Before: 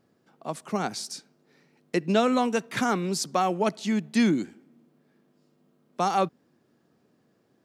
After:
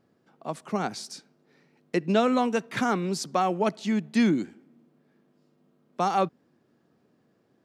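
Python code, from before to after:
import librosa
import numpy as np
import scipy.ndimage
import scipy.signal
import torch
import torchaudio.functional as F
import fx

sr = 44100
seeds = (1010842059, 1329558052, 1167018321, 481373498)

y = fx.high_shelf(x, sr, hz=5400.0, db=-7.0)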